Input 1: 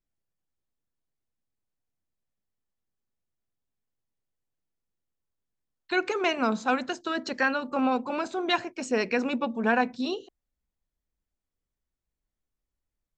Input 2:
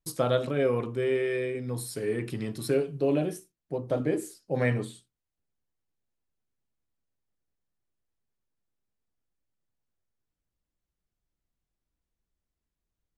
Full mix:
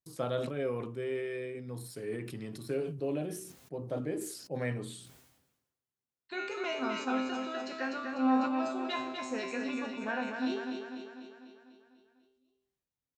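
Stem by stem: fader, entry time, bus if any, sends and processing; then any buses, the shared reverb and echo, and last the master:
+2.0 dB, 0.40 s, no send, echo send -5.5 dB, resonator 130 Hz, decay 0.57 s, harmonics all, mix 90%
-8.5 dB, 0.00 s, no send, no echo send, de-esser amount 90%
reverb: off
echo: feedback echo 0.248 s, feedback 56%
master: HPF 83 Hz; sustainer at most 56 dB/s

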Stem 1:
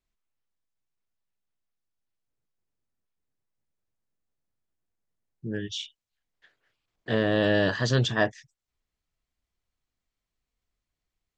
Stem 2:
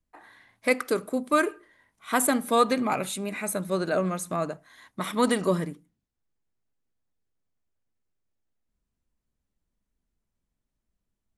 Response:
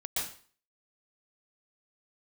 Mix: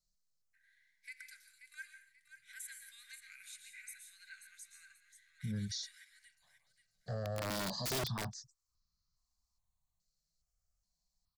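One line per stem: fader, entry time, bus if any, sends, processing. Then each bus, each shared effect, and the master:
+1.0 dB, 0.00 s, no send, no echo send, EQ curve 200 Hz 0 dB, 340 Hz -24 dB, 520 Hz -8 dB, 1200 Hz +2 dB, 1800 Hz -22 dB, 2800 Hz -29 dB, 4200 Hz +7 dB, 7000 Hz +6 dB, 10000 Hz -1 dB; step phaser 2.4 Hz 270–2700 Hz
-16.5 dB, 0.40 s, send -8 dB, echo send -8 dB, limiter -17 dBFS, peak gain reduction 8.5 dB; rippled Chebyshev high-pass 1500 Hz, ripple 6 dB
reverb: on, RT60 0.45 s, pre-delay 0.113 s
echo: feedback echo 0.534 s, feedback 30%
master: wrapped overs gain 23 dB; limiter -31.5 dBFS, peak gain reduction 8.5 dB

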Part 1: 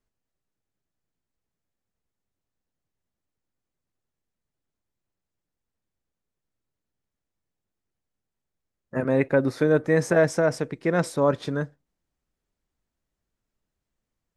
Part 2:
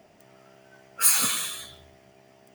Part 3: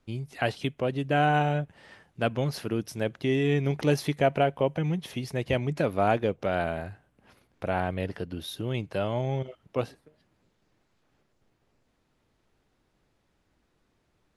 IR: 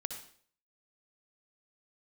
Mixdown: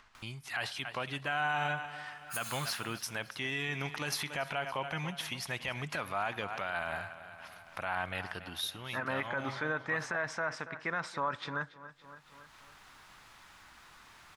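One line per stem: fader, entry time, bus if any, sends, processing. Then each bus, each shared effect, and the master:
-0.5 dB, 0.00 s, send -23 dB, echo send -18.5 dB, LPF 3700 Hz 12 dB/oct
-19.5 dB, 1.30 s, no send, echo send -19 dB, dry
+2.5 dB, 0.15 s, send -18.5 dB, echo send -15.5 dB, auto duck -8 dB, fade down 0.35 s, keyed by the first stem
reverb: on, RT60 0.55 s, pre-delay 56 ms
echo: feedback echo 0.281 s, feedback 36%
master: resonant low shelf 700 Hz -14 dB, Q 1.5; upward compressor, threshold -41 dBFS; limiter -23 dBFS, peak gain reduction 12.5 dB

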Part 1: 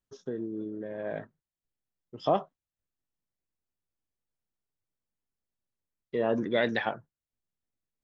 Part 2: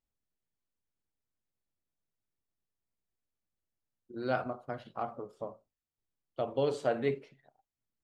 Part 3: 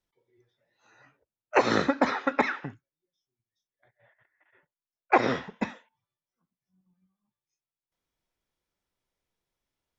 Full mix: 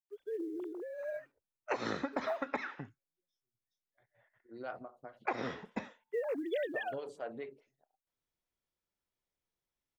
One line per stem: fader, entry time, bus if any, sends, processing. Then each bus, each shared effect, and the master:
-5.0 dB, 0.00 s, no send, sine-wave speech; companded quantiser 8-bit
-9.5 dB, 0.35 s, no send, photocell phaser 4.7 Hz
-7.5 dB, 0.15 s, no send, dry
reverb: off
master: compressor 4:1, threshold -32 dBFS, peak gain reduction 9 dB

